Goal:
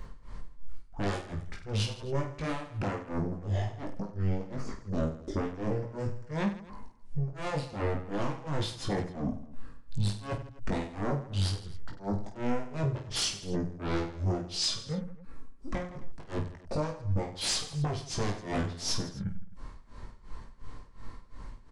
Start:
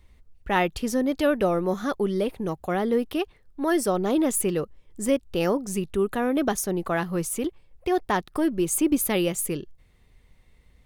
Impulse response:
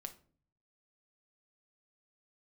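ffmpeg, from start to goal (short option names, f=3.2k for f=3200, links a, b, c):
-filter_complex "[0:a]asplit=2[a][b];[b]aeval=exprs='0.398*sin(PI/2*8.91*val(0)/0.398)':c=same,volume=-5dB[c];[a][c]amix=inputs=2:normalize=0,acompressor=threshold=-22dB:ratio=10,highshelf=f=2k:g=-5.5,alimiter=limit=-24dB:level=0:latency=1:release=12,tremolo=f=5.6:d=1,asetrate=22050,aresample=44100,volume=23.5dB,asoftclip=hard,volume=-23.5dB,asplit=2[d][e];[e]aecho=0:1:20|50|95|162.5|263.8:0.631|0.398|0.251|0.158|0.1[f];[d][f]amix=inputs=2:normalize=0,volume=-2dB"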